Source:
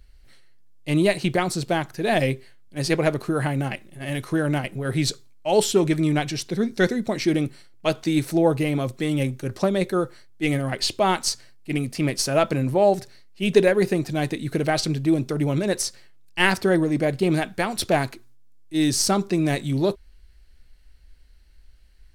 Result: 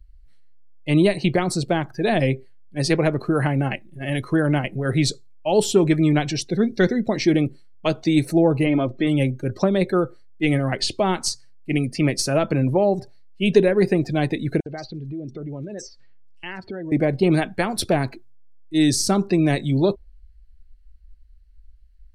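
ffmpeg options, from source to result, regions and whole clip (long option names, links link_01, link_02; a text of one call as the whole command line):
ffmpeg -i in.wav -filter_complex "[0:a]asettb=1/sr,asplit=3[link_01][link_02][link_03];[link_01]atrim=end=8.664[link_04];[link_02]atrim=start=8.66:end=9.07,asetpts=PTS-STARTPTS,afade=type=in:duration=0.004:curve=qsin,afade=type=out:start_time=0.406:duration=0.004:curve=qsin,lowpass=3800,aecho=1:1:3.2:0.45,atrim=end_sample=18081,acompressor=mode=upward:threshold=-36dB:ratio=2.5:attack=3.2:release=140:knee=2.83:detection=peak[link_05];[link_03]atrim=start=9.066[link_06];[link_04][link_05]acrossfade=duration=0.004:curve1=hsin:curve2=qsin[link_07];[link_07][link_06]acrossfade=duration=0.004:curve1=qsin:curve2=hsin,asettb=1/sr,asplit=3[link_08][link_09][link_10];[link_08]atrim=end=14.604[link_11];[link_09]atrim=start=14.6:end=16.92,asetpts=PTS-STARTPTS,afade=type=in:duration=0.004:curve=qsin,afade=type=out:start_time=2.316:duration=0.004:curve=qsin,lowpass=frequency=7100:width=0.5412,lowpass=frequency=7100:width=1.3066,acompressor=threshold=-35dB:ratio=4:attack=3.2:release=140:knee=1:detection=peak,acrossover=split=4600[link_12][link_13];[link_12]adelay=60[link_14];[link_14][link_13]amix=inputs=2:normalize=0,atrim=end_sample=102312[link_15];[link_10]atrim=start=16.916[link_16];[link_11][link_15]acrossfade=duration=0.004:curve1=hsin:curve2=qsin[link_17];[link_17][link_16]acrossfade=duration=0.004:curve1=qsin:curve2=hsin,afftdn=noise_reduction=19:noise_floor=-40,acrossover=split=430[link_18][link_19];[link_19]acompressor=threshold=-24dB:ratio=6[link_20];[link_18][link_20]amix=inputs=2:normalize=0,volume=3.5dB" out.wav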